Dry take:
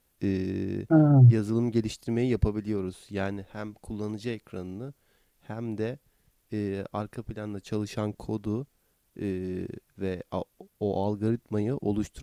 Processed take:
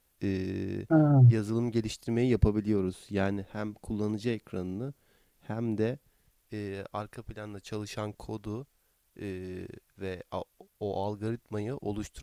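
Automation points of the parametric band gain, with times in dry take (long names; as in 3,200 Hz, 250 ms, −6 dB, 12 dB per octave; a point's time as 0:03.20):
parametric band 210 Hz 2.4 octaves
0:01.95 −4 dB
0:02.50 +2.5 dB
0:05.88 +2.5 dB
0:06.60 −8.5 dB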